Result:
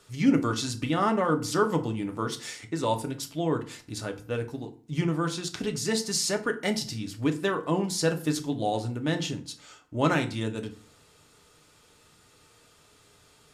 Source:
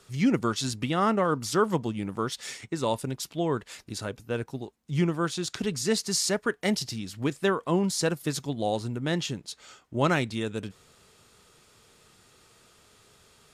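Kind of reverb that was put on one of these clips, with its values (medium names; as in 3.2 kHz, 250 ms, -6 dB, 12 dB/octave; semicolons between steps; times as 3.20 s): FDN reverb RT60 0.42 s, low-frequency decay 1.3×, high-frequency decay 0.7×, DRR 5 dB; trim -1.5 dB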